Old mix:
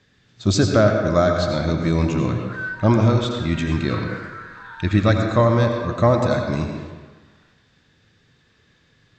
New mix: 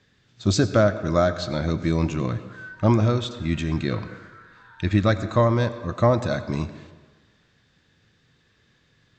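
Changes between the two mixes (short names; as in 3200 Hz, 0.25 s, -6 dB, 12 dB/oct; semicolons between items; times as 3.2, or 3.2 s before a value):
speech: send -11.5 dB; background -11.5 dB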